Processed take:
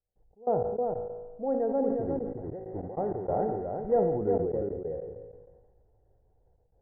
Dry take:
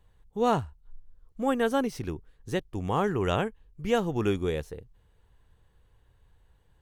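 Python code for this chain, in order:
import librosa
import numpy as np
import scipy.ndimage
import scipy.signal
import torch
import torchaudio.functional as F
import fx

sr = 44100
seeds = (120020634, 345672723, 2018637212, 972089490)

y = fx.block_float(x, sr, bits=3, at=(2.01, 4.02))
y = fx.echo_feedback(y, sr, ms=138, feedback_pct=52, wet_db=-20.5)
y = fx.rider(y, sr, range_db=4, speed_s=0.5)
y = scipy.signal.sosfilt(scipy.signal.cheby1(6, 6, 2000.0, 'lowpass', fs=sr, output='sos'), y)
y = fx.comb_fb(y, sr, f0_hz=54.0, decay_s=1.3, harmonics='all', damping=0.0, mix_pct=70)
y = y + 10.0 ** (-5.0 / 20.0) * np.pad(y, (int(360 * sr / 1000.0), 0))[:len(y)]
y = fx.step_gate(y, sr, bpm=96, pattern='.x.x.x.xxxxxxx', floor_db=-24.0, edge_ms=4.5)
y = fx.curve_eq(y, sr, hz=(290.0, 760.0, 1200.0), db=(0, 6, -18))
y = fx.sustainer(y, sr, db_per_s=37.0)
y = F.gain(torch.from_numpy(y), 6.0).numpy()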